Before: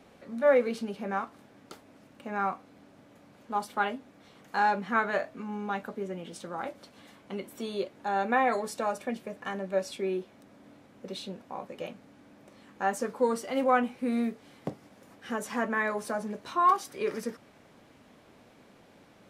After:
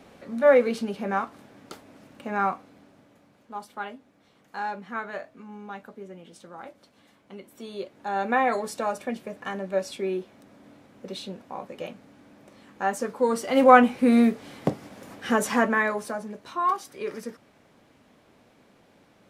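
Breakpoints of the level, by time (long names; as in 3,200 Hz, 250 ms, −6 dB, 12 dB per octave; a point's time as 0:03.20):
0:02.44 +5 dB
0:03.54 −6 dB
0:07.43 −6 dB
0:08.31 +2.5 dB
0:13.22 +2.5 dB
0:13.69 +10.5 dB
0:15.46 +10.5 dB
0:16.26 −1.5 dB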